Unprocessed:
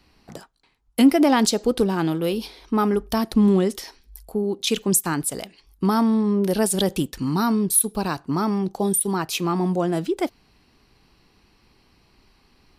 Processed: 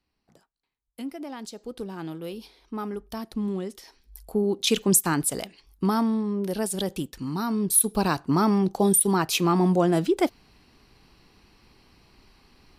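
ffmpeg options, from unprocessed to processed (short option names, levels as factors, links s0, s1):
-af "volume=2.66,afade=t=in:st=1.46:d=0.65:silence=0.398107,afade=t=in:st=3.82:d=0.56:silence=0.251189,afade=t=out:st=5.38:d=0.9:silence=0.446684,afade=t=in:st=7.48:d=0.53:silence=0.375837"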